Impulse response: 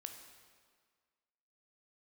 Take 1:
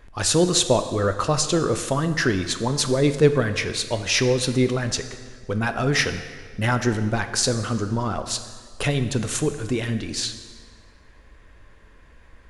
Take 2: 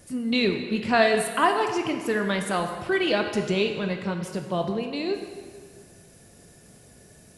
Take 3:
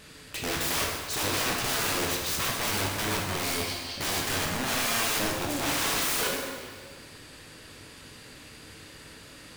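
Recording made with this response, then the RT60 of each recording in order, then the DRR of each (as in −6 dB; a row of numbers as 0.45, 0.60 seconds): 2; 1.8, 1.8, 1.8 seconds; 8.5, 4.5, −2.0 decibels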